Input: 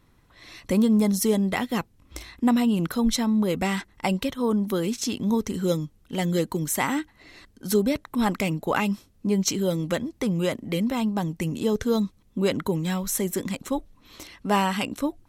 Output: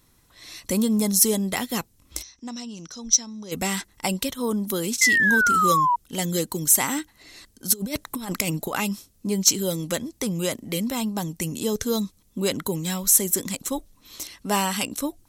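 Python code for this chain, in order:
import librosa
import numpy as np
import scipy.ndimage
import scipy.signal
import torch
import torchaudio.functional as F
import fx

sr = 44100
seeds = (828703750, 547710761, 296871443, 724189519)

y = fx.ladder_lowpass(x, sr, hz=6000.0, resonance_pct=90, at=(2.21, 3.51), fade=0.02)
y = fx.spec_paint(y, sr, seeds[0], shape='fall', start_s=5.01, length_s=0.95, low_hz=940.0, high_hz=2100.0, level_db=-18.0)
y = fx.over_compress(y, sr, threshold_db=-26.0, ratio=-0.5, at=(7.72, 8.77), fade=0.02)
y = fx.bass_treble(y, sr, bass_db=-1, treble_db=14)
y = 10.0 ** (-2.0 / 20.0) * np.tanh(y / 10.0 ** (-2.0 / 20.0))
y = y * 10.0 ** (-1.5 / 20.0)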